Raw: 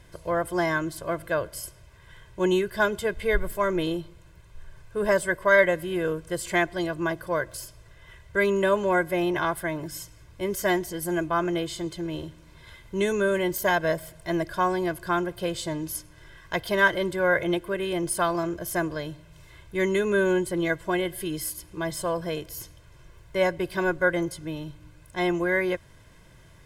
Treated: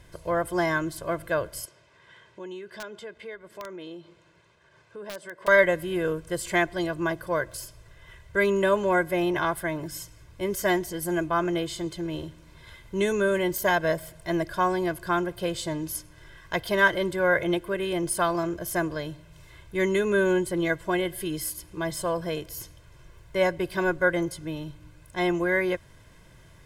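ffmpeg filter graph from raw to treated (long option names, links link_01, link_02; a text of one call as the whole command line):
ffmpeg -i in.wav -filter_complex "[0:a]asettb=1/sr,asplit=3[link_01][link_02][link_03];[link_01]atrim=end=1.654[link_04];[link_02]atrim=start=1.65:end=5.48,asetpts=PTS-STARTPTS,afade=type=in:duration=0.004:curve=qsin,afade=type=out:start_time=3.826:duration=0.004:curve=qsin,acompressor=threshold=-40dB:ratio=3:attack=3.2:release=140:knee=1:detection=peak,highpass=220,lowpass=5700,aeval=exprs='(mod(26.6*val(0)+1,2)-1)/26.6':channel_layout=same[link_05];[link_03]atrim=start=5.476[link_06];[link_04][link_05]acrossfade=duration=0.004:curve1=hsin:curve2=qsin[link_07];[link_07][link_06]acrossfade=duration=0.004:curve1=qsin:curve2=hsin" out.wav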